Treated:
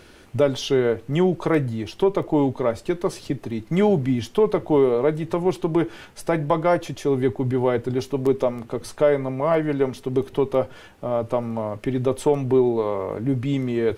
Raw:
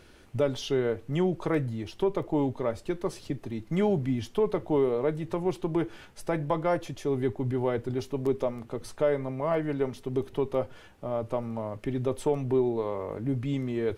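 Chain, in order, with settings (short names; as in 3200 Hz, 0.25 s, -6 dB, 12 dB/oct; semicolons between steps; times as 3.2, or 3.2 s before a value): low shelf 88 Hz -5.5 dB; gain +7.5 dB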